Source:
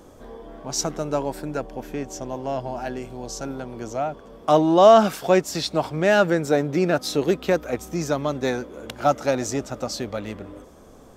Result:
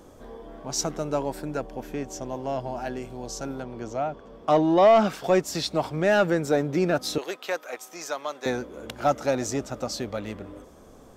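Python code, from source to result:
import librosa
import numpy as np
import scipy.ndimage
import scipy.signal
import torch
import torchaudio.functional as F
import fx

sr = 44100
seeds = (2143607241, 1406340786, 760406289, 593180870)

y = fx.peak_eq(x, sr, hz=12000.0, db=-10.5, octaves=1.2, at=(3.63, 5.24))
y = fx.highpass(y, sr, hz=730.0, slope=12, at=(7.18, 8.46))
y = 10.0 ** (-7.5 / 20.0) * np.tanh(y / 10.0 ** (-7.5 / 20.0))
y = y * librosa.db_to_amplitude(-2.0)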